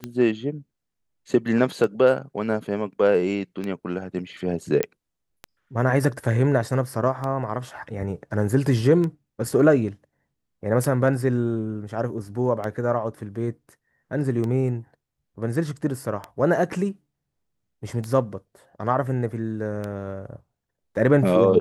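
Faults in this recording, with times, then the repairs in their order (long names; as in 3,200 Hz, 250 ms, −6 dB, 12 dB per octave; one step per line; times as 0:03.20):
scratch tick 33 1/3 rpm −17 dBFS
0:04.83: click −8 dBFS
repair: click removal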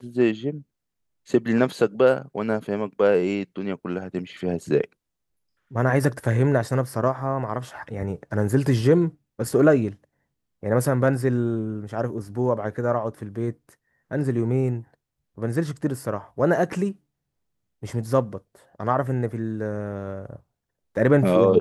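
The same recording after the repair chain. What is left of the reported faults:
none of them is left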